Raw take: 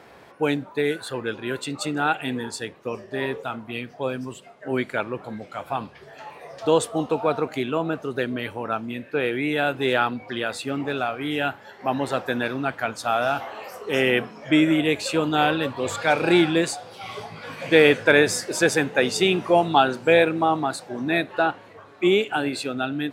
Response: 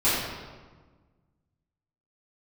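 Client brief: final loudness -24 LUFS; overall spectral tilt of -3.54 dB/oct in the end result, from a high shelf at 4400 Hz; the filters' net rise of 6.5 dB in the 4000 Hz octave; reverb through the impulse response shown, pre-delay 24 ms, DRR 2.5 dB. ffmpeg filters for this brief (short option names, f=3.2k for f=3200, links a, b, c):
-filter_complex "[0:a]equalizer=f=4k:t=o:g=5,highshelf=f=4.4k:g=6.5,asplit=2[a][b];[1:a]atrim=start_sample=2205,adelay=24[c];[b][c]afir=irnorm=-1:irlink=0,volume=-18dB[d];[a][d]amix=inputs=2:normalize=0,volume=-4.5dB"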